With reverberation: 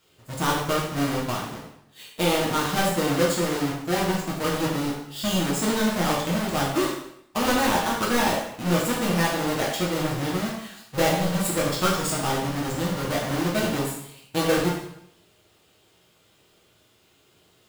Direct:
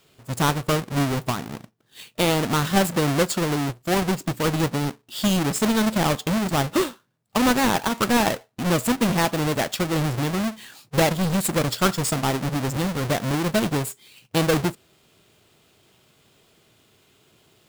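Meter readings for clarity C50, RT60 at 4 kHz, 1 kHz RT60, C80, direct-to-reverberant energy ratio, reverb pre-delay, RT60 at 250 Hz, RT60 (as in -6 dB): 3.0 dB, 0.70 s, 0.75 s, 6.0 dB, -5.5 dB, 4 ms, 0.70 s, 0.75 s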